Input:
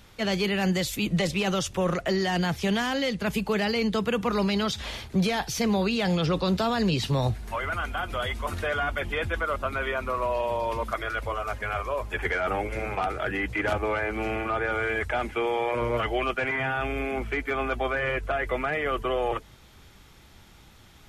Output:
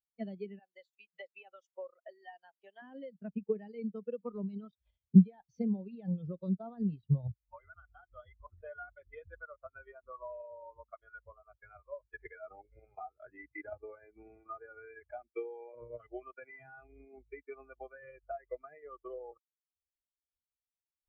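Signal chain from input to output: 0.59–2.82 s: high-pass 550 Hz 12 dB/octave; transient shaper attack +8 dB, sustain -12 dB; spectral contrast expander 2.5:1; trim -1.5 dB

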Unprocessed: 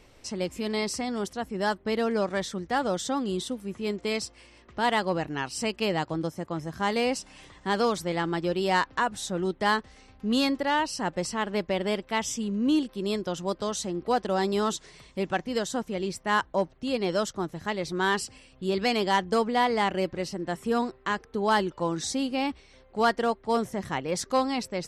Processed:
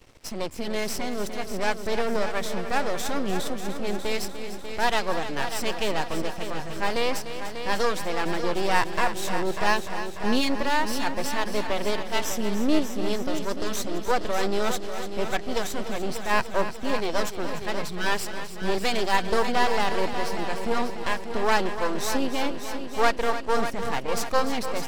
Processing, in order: spectral selection erased 17.82–18.06 s, 220–1200 Hz; half-wave rectifier; multi-head delay 296 ms, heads first and second, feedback 58%, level -11.5 dB; trim +5.5 dB

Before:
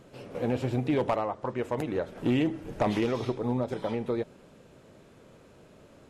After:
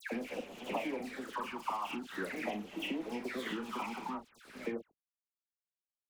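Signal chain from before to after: slices played last to first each 147 ms, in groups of 4; high-order bell 1.5 kHz +9.5 dB 2.5 oct; doubling 39 ms -9 dB; on a send: delay 457 ms -22.5 dB; on the sum: gate with hold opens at -37 dBFS; phase shifter stages 8, 0.45 Hz, lowest notch 510–1500 Hz; compression 5:1, threshold -41 dBFS, peak gain reduction 18 dB; steep high-pass 180 Hz 96 dB/octave; crossover distortion -55 dBFS; treble shelf 7.8 kHz +7.5 dB; phase dispersion lows, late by 115 ms, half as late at 1.8 kHz; trim +6.5 dB

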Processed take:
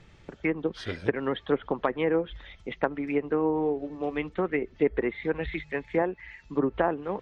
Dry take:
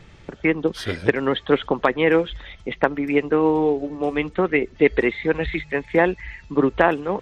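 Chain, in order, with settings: low-pass that closes with the level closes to 1.2 kHz, closed at -13 dBFS; 6.02–6.46 s: bass shelf 140 Hz -11.5 dB; trim -7.5 dB

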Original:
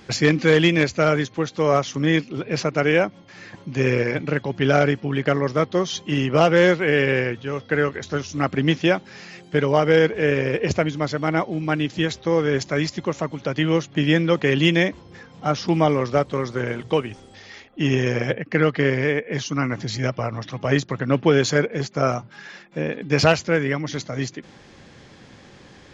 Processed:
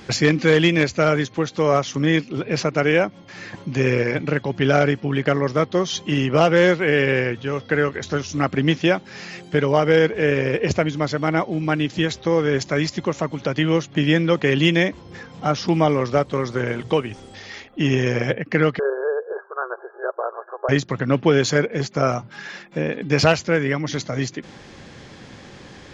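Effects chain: in parallel at 0 dB: compression, threshold -29 dBFS, peak gain reduction 17.5 dB; 18.79–20.69 s: on the sum: brick-wall FIR band-pass 360–1700 Hz; trim -1 dB

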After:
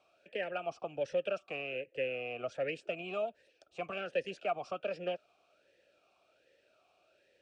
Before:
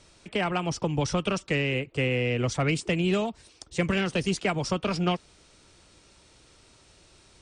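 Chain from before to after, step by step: talking filter a-e 1.3 Hz; trim +1.5 dB

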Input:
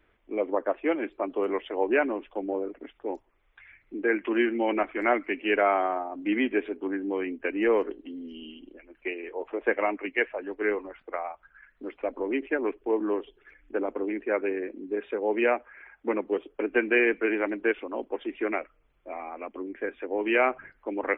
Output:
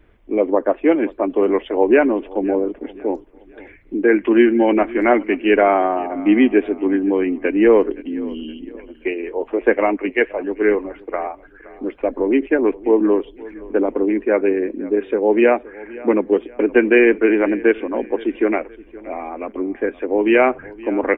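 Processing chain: bass shelf 460 Hz +11 dB; band-stop 1.3 kHz, Q 24; feedback delay 520 ms, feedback 38%, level -20 dB; trim +5.5 dB

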